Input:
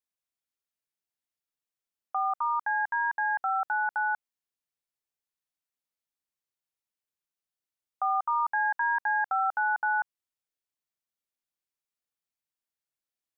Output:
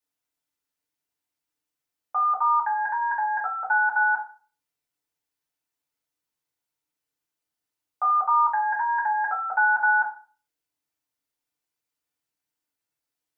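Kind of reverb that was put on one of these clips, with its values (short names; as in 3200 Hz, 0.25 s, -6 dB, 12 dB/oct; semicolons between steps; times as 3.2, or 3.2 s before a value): FDN reverb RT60 0.39 s, low-frequency decay 1.05×, high-frequency decay 0.7×, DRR -5 dB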